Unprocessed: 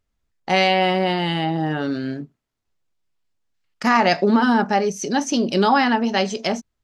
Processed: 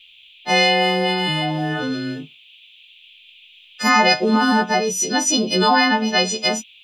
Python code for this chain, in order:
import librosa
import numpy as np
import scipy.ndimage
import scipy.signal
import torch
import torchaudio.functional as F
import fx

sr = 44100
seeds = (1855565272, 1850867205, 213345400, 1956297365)

y = fx.freq_snap(x, sr, grid_st=3)
y = fx.dmg_noise_band(y, sr, seeds[0], low_hz=2400.0, high_hz=3600.0, level_db=-48.0)